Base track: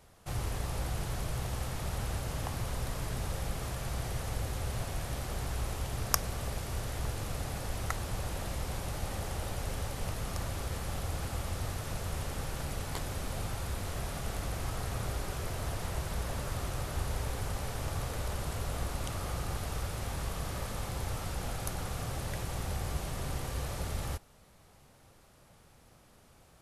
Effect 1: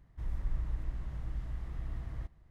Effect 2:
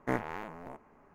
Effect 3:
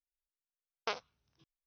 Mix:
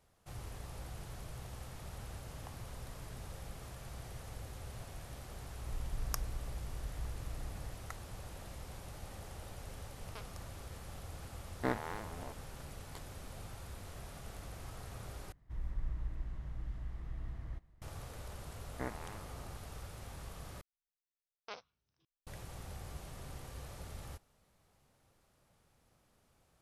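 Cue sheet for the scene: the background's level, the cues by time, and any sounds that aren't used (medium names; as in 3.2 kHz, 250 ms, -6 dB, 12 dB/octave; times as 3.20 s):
base track -11.5 dB
5.48 s: add 1 -5 dB
9.28 s: add 3 -15 dB
11.56 s: add 2 -2.5 dB + sliding maximum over 5 samples
15.32 s: replace with 1 -4 dB
18.72 s: add 2 -10 dB
20.61 s: replace with 3 -6.5 dB + transient shaper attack -8 dB, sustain 0 dB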